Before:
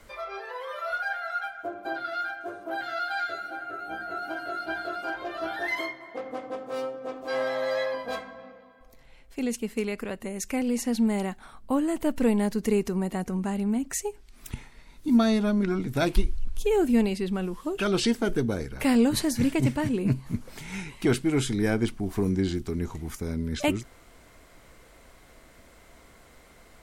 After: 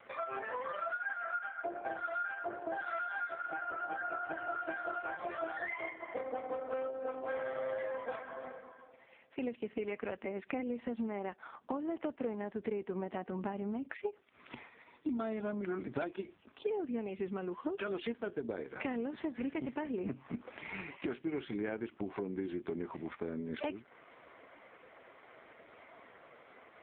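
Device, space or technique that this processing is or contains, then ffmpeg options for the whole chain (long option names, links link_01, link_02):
voicemail: -filter_complex "[0:a]asplit=3[link_01][link_02][link_03];[link_01]afade=type=out:start_time=9.63:duration=0.02[link_04];[link_02]lowshelf=frequency=99:gain=6,afade=type=in:start_time=9.63:duration=0.02,afade=type=out:start_time=10.97:duration=0.02[link_05];[link_03]afade=type=in:start_time=10.97:duration=0.02[link_06];[link_04][link_05][link_06]amix=inputs=3:normalize=0,highpass=350,lowpass=2700,acompressor=threshold=-38dB:ratio=8,volume=4.5dB" -ar 8000 -c:a libopencore_amrnb -b:a 4750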